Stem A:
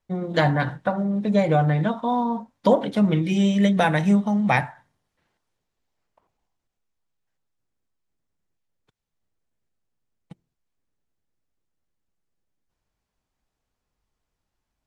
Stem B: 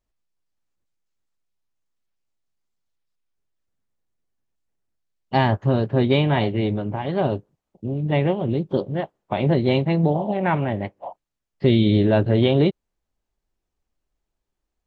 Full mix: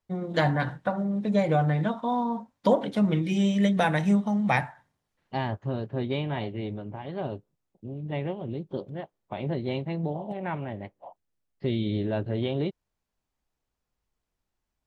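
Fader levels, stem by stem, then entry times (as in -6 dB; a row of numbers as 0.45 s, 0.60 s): -4.0 dB, -11.0 dB; 0.00 s, 0.00 s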